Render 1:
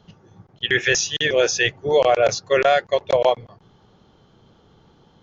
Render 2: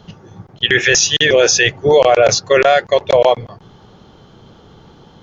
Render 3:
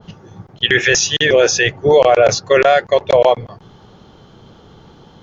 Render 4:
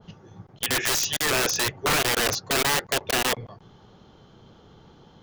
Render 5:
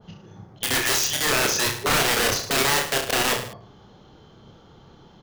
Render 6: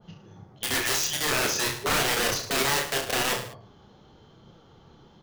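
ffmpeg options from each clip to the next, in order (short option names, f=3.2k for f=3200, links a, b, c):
-af "alimiter=level_in=12dB:limit=-1dB:release=50:level=0:latency=1,volume=-1dB"
-af "adynamicequalizer=threshold=0.0501:dfrequency=2300:dqfactor=0.7:tfrequency=2300:tqfactor=0.7:attack=5:release=100:ratio=0.375:range=2.5:mode=cutabove:tftype=highshelf"
-af "aeval=exprs='(mod(2.66*val(0)+1,2)-1)/2.66':c=same,volume=-8.5dB"
-af "aecho=1:1:30|64.5|104.2|149.8|202.3:0.631|0.398|0.251|0.158|0.1"
-af "flanger=delay=5.6:depth=8.8:regen=-42:speed=0.89:shape=sinusoidal"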